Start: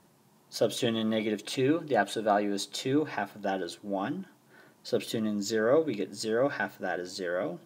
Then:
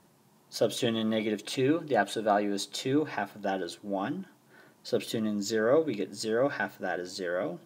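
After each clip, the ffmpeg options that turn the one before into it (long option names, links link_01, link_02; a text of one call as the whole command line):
ffmpeg -i in.wav -af anull out.wav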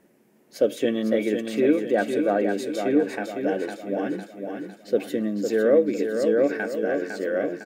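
ffmpeg -i in.wav -af "equalizer=frequency=125:width_type=o:width=1:gain=-10,equalizer=frequency=250:width_type=o:width=1:gain=7,equalizer=frequency=500:width_type=o:width=1:gain=8,equalizer=frequency=1000:width_type=o:width=1:gain=-10,equalizer=frequency=2000:width_type=o:width=1:gain=8,equalizer=frequency=4000:width_type=o:width=1:gain=-8,equalizer=frequency=8000:width_type=o:width=1:gain=-3,aecho=1:1:505|1010|1515|2020|2525|3030:0.501|0.236|0.111|0.052|0.0245|0.0115" out.wav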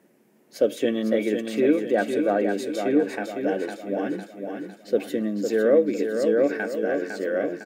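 ffmpeg -i in.wav -af "highpass=110" out.wav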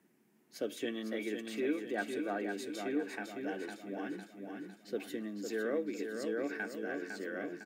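ffmpeg -i in.wav -filter_complex "[0:a]equalizer=frequency=550:width=2.4:gain=-12,acrossover=split=300[link_01][link_02];[link_01]acompressor=threshold=-39dB:ratio=6[link_03];[link_03][link_02]amix=inputs=2:normalize=0,volume=-8dB" out.wav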